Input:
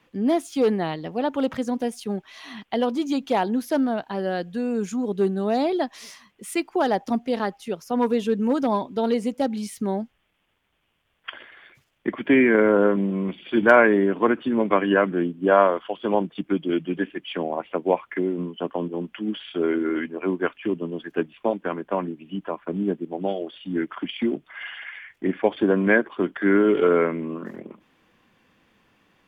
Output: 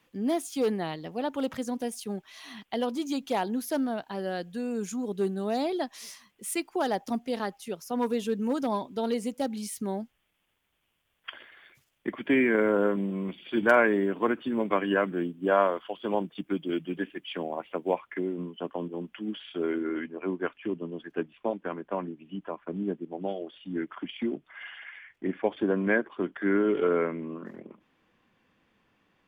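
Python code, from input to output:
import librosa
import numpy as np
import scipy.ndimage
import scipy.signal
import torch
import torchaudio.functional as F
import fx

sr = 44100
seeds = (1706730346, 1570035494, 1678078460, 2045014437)

y = fx.high_shelf(x, sr, hz=5800.0, db=fx.steps((0.0, 11.5), (17.98, 3.5), (19.79, -6.5)))
y = y * 10.0 ** (-6.5 / 20.0)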